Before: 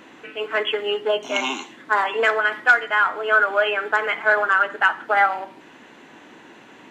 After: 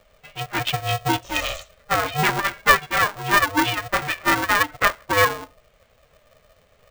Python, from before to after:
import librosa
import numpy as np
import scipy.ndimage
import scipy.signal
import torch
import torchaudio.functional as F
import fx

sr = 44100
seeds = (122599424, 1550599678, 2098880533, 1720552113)

y = fx.bin_expand(x, sr, power=1.5)
y = y * np.sign(np.sin(2.0 * np.pi * 300.0 * np.arange(len(y)) / sr))
y = y * librosa.db_to_amplitude(1.5)